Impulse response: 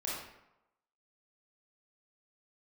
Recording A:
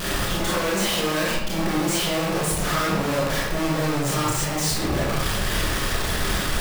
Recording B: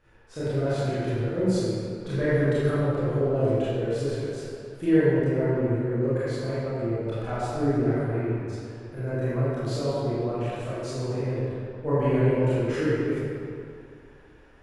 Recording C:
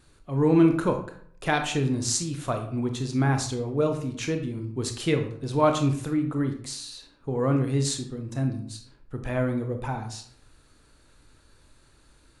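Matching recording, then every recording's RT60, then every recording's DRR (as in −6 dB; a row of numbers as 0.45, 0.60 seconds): A; 0.90, 2.4, 0.60 seconds; −6.5, −12.5, 5.0 decibels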